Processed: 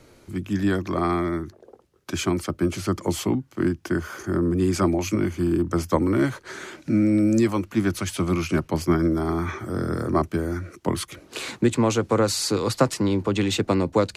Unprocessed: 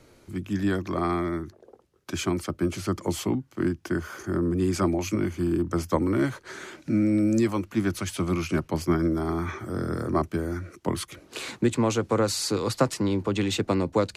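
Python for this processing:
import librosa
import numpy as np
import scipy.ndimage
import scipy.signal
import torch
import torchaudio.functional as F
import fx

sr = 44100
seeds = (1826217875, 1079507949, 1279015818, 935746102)

y = x * 10.0 ** (3.0 / 20.0)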